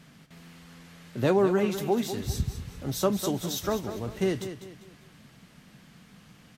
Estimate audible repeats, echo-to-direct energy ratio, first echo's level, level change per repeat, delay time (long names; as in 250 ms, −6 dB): 3, −10.0 dB, −10.5 dB, −8.5 dB, 199 ms